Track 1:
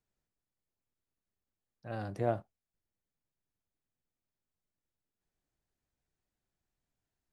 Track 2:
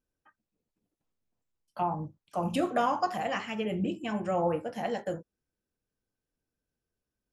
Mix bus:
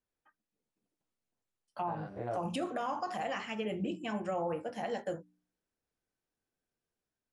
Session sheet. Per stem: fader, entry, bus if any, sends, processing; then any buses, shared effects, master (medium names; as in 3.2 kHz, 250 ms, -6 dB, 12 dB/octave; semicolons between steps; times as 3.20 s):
+2.0 dB, 0.00 s, no send, spectrogram pixelated in time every 100 ms; tone controls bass -8 dB, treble -12 dB; detune thickener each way 12 cents
-6.5 dB, 0.00 s, no send, bass shelf 92 Hz -11.5 dB; de-hum 59.82 Hz, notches 5; level rider gain up to 4 dB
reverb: none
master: steep low-pass 11 kHz 96 dB/octave; peak limiter -26.5 dBFS, peak gain reduction 8.5 dB